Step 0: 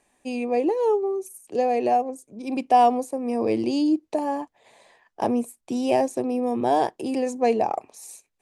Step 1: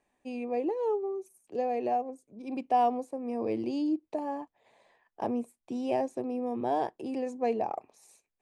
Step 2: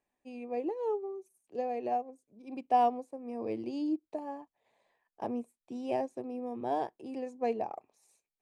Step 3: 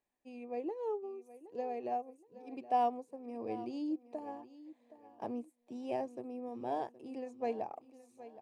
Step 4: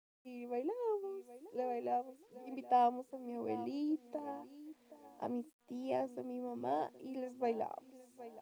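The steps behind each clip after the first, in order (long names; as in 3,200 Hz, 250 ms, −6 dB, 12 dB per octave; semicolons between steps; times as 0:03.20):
low-pass filter 2,700 Hz 6 dB per octave; level −8 dB
expander for the loud parts 1.5 to 1, over −40 dBFS
repeating echo 770 ms, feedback 32%, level −16 dB; level −4.5 dB
bit-depth reduction 12 bits, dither none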